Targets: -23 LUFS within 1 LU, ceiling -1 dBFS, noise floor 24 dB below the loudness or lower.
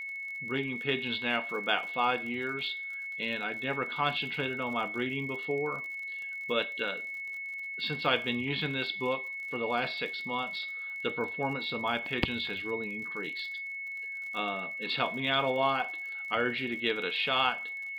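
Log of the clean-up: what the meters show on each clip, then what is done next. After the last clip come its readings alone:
ticks 54/s; steady tone 2200 Hz; tone level -36 dBFS; loudness -31.5 LUFS; peak -9.0 dBFS; loudness target -23.0 LUFS
-> de-click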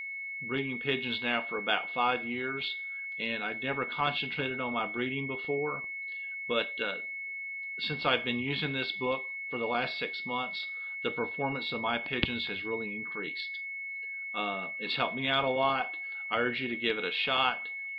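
ticks 0.11/s; steady tone 2200 Hz; tone level -36 dBFS
-> notch 2200 Hz, Q 30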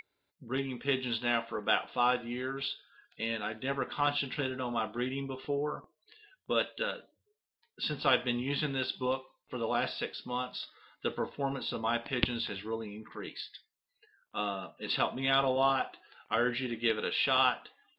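steady tone none; loudness -33.0 LUFS; peak -6.5 dBFS; loudness target -23.0 LUFS
-> gain +10 dB; limiter -1 dBFS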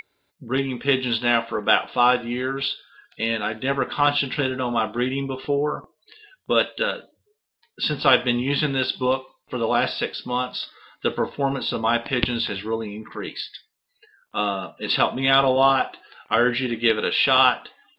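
loudness -23.0 LUFS; peak -1.0 dBFS; noise floor -75 dBFS

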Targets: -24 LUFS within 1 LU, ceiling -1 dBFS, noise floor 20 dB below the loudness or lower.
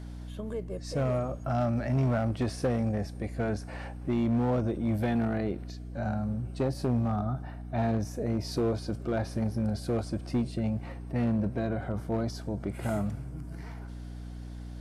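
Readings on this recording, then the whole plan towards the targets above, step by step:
clipped 1.8%; flat tops at -21.5 dBFS; hum 60 Hz; harmonics up to 300 Hz; hum level -38 dBFS; loudness -31.0 LUFS; peak -21.5 dBFS; loudness target -24.0 LUFS
-> clip repair -21.5 dBFS; notches 60/120/180/240/300 Hz; gain +7 dB

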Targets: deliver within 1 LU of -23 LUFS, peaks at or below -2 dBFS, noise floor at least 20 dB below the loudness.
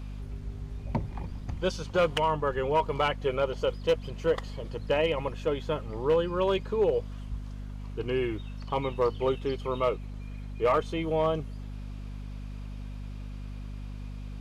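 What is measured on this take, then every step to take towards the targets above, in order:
clipped 0.3%; flat tops at -17.5 dBFS; hum 50 Hz; harmonics up to 250 Hz; hum level -36 dBFS; loudness -29.5 LUFS; peak -17.5 dBFS; loudness target -23.0 LUFS
-> clip repair -17.5 dBFS; notches 50/100/150/200/250 Hz; gain +6.5 dB

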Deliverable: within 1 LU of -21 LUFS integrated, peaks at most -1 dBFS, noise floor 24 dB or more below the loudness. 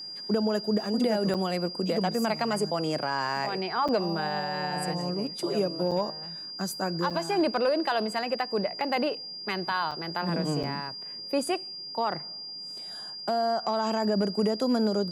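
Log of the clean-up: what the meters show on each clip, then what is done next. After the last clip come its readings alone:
dropouts 6; longest dropout 6.2 ms; steady tone 4800 Hz; tone level -37 dBFS; loudness -28.5 LUFS; peak -16.5 dBFS; loudness target -21.0 LUFS
-> interpolate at 1.34/3.88/5.91/7.1/9.91/10.63, 6.2 ms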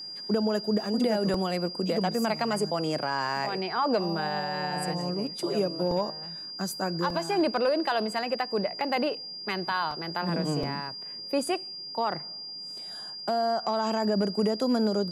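dropouts 0; steady tone 4800 Hz; tone level -37 dBFS
-> notch 4800 Hz, Q 30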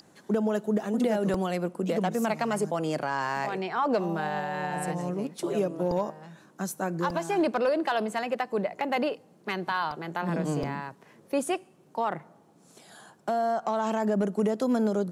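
steady tone none; loudness -29.0 LUFS; peak -14.5 dBFS; loudness target -21.0 LUFS
-> gain +8 dB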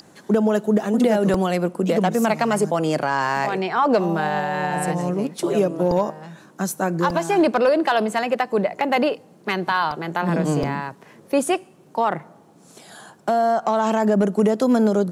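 loudness -21.0 LUFS; peak -6.5 dBFS; noise floor -51 dBFS

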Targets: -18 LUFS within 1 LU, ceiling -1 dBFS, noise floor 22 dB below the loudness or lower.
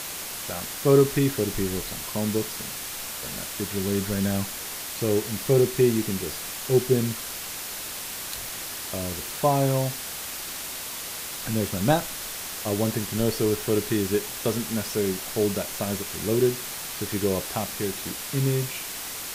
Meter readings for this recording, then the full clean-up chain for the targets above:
noise floor -35 dBFS; noise floor target -49 dBFS; loudness -26.5 LUFS; peak -7.5 dBFS; loudness target -18.0 LUFS
-> noise print and reduce 14 dB; gain +8.5 dB; limiter -1 dBFS

